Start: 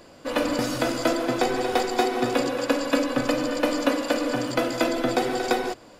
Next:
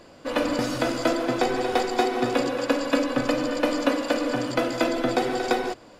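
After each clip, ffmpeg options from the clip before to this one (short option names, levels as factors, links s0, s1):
-af "highshelf=f=9300:g=-8"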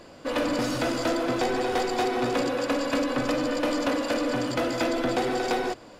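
-af "asoftclip=type=tanh:threshold=0.0841,volume=1.19"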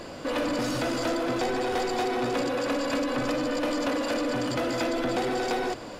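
-af "alimiter=level_in=2.11:limit=0.0631:level=0:latency=1:release=12,volume=0.473,volume=2.51"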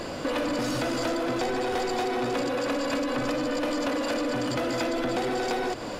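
-af "acompressor=threshold=0.0282:ratio=6,volume=1.88"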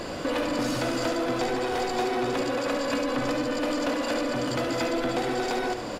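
-af "aecho=1:1:71:0.422"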